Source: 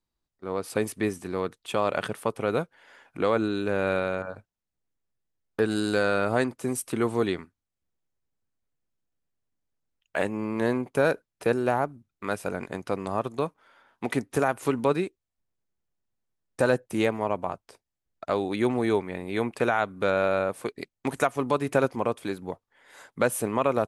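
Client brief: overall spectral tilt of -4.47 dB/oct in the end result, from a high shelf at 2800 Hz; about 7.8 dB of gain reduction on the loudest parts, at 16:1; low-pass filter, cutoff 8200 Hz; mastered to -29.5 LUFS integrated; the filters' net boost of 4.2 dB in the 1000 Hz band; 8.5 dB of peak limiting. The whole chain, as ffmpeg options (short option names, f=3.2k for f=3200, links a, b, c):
-af "lowpass=8.2k,equalizer=f=1k:t=o:g=4.5,highshelf=f=2.8k:g=7.5,acompressor=threshold=-23dB:ratio=16,volume=3dB,alimiter=limit=-14.5dB:level=0:latency=1"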